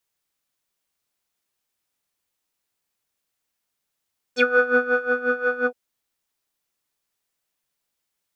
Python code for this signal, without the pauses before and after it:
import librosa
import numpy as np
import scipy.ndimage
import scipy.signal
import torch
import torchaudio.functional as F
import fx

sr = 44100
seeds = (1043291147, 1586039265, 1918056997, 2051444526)

y = fx.sub_patch_tremolo(sr, seeds[0], note=71, wave='square', wave2='square', interval_st=-12, detune_cents=16, level2_db=-10.5, sub_db=-15.0, noise_db=-11, kind='lowpass', cutoff_hz=640.0, q=6.1, env_oct=3.5, env_decay_s=0.07, env_sustain_pct=30, attack_ms=72.0, decay_s=0.61, sustain_db=-6, release_s=0.07, note_s=1.3, lfo_hz=5.6, tremolo_db=15.0)